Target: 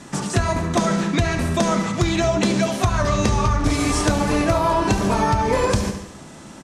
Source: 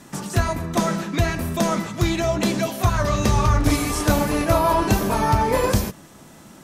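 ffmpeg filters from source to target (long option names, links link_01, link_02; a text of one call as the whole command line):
ffmpeg -i in.wav -filter_complex "[0:a]asplit=2[link_01][link_02];[link_02]aecho=0:1:71|142|213|284|355|426:0.266|0.141|0.0747|0.0396|0.021|0.0111[link_03];[link_01][link_03]amix=inputs=2:normalize=0,acompressor=threshold=-20dB:ratio=6,lowpass=frequency=9300:width=0.5412,lowpass=frequency=9300:width=1.3066,volume=5dB" out.wav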